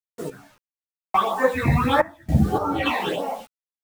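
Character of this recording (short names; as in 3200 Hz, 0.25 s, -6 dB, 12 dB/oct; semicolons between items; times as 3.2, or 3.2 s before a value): phasing stages 8, 1.6 Hz, lowest notch 390–3400 Hz; a quantiser's noise floor 8-bit, dither none; random-step tremolo 3.5 Hz, depth 100%; a shimmering, thickened sound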